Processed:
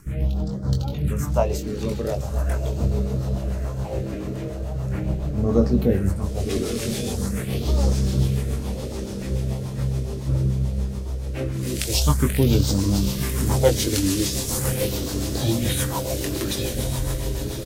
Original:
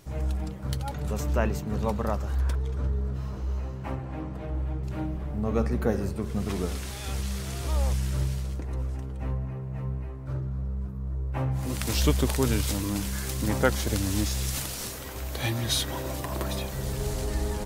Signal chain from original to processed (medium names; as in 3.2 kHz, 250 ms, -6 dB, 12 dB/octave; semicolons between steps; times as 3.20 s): fade out at the end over 1.08 s; phase shifter stages 4, 0.41 Hz, lowest notch 130–2500 Hz; reverse; upward compressor, threshold -30 dBFS; reverse; doubling 21 ms -5 dB; on a send: echo that smears into a reverb 1171 ms, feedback 64%, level -8 dB; on the sum: rotary cabinet horn 7 Hz; trim +8 dB